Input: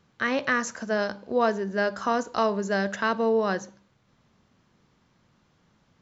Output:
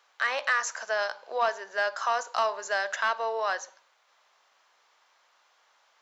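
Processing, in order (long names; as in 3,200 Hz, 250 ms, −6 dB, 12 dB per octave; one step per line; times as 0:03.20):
high-pass filter 660 Hz 24 dB per octave
in parallel at −2 dB: downward compressor, threshold −37 dBFS, peak gain reduction 15.5 dB
on the sum: soft clipping −14.5 dBFS, distortion −20 dB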